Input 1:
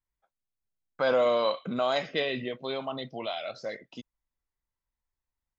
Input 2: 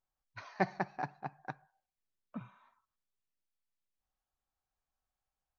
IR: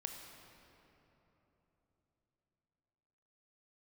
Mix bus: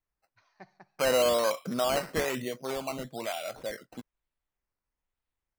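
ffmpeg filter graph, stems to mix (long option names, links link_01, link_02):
-filter_complex "[0:a]acrusher=samples=10:mix=1:aa=0.000001:lfo=1:lforange=6:lforate=1.1,volume=-0.5dB[link_01];[1:a]highshelf=frequency=3600:gain=8,volume=-19.5dB[link_02];[link_01][link_02]amix=inputs=2:normalize=0"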